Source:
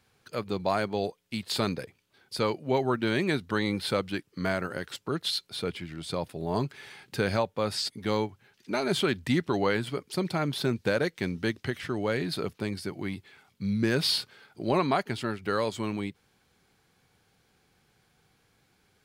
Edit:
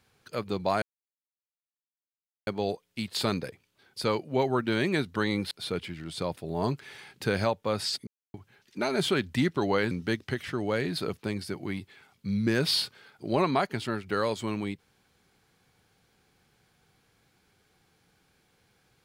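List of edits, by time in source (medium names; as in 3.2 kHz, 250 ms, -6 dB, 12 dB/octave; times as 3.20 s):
0.82 s: insert silence 1.65 s
3.86–5.43 s: delete
7.99–8.26 s: mute
9.83–11.27 s: delete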